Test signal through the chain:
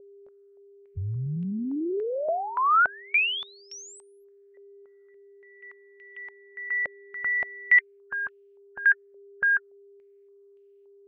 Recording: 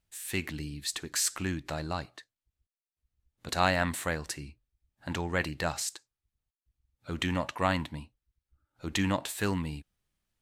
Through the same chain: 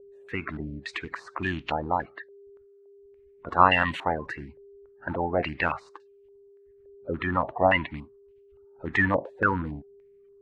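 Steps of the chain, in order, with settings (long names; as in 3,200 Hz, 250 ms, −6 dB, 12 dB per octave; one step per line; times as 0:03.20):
spectral magnitudes quantised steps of 30 dB
steady tone 400 Hz −56 dBFS
low-pass on a step sequencer 3.5 Hz 550–2,800 Hz
level +2.5 dB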